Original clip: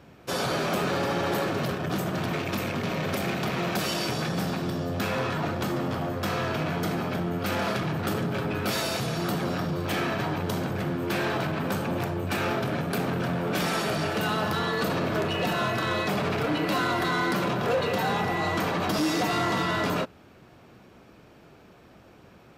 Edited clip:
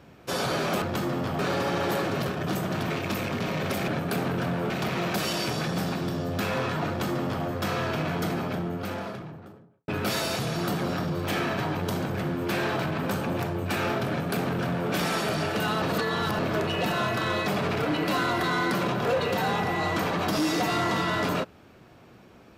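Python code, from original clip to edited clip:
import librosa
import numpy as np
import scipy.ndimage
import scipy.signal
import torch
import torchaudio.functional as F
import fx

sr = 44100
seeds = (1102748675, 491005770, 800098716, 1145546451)

y = fx.studio_fade_out(x, sr, start_s=6.82, length_s=1.67)
y = fx.edit(y, sr, fx.duplicate(start_s=5.49, length_s=0.57, to_s=0.82),
    fx.duplicate(start_s=12.7, length_s=0.82, to_s=3.31),
    fx.reverse_span(start_s=14.43, length_s=0.57), tone=tone)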